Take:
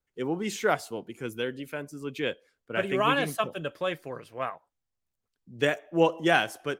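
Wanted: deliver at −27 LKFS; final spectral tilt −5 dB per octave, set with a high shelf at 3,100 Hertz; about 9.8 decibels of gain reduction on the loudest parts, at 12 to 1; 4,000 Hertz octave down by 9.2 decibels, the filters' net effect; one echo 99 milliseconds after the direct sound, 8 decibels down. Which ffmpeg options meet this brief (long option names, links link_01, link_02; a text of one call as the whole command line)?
ffmpeg -i in.wav -af "highshelf=frequency=3100:gain=-7.5,equalizer=frequency=4000:width_type=o:gain=-8,acompressor=threshold=-26dB:ratio=12,aecho=1:1:99:0.398,volume=7dB" out.wav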